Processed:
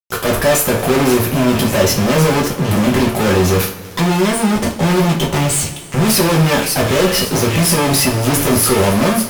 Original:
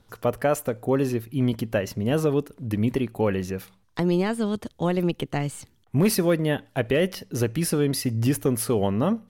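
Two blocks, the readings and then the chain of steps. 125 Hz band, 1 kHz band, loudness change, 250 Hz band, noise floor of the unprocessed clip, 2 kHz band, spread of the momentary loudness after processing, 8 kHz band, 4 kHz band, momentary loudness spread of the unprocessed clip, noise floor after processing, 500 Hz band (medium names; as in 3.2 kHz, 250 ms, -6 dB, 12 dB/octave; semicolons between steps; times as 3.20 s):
+10.0 dB, +14.5 dB, +11.0 dB, +9.5 dB, -62 dBFS, +14.5 dB, 4 LU, +17.0 dB, +17.0 dB, 6 LU, -29 dBFS, +9.0 dB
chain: feedback echo behind a high-pass 566 ms, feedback 35%, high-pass 2.2 kHz, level -15.5 dB; fuzz box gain 47 dB, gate -46 dBFS; two-slope reverb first 0.33 s, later 3.2 s, from -22 dB, DRR -2.5 dB; trim -3 dB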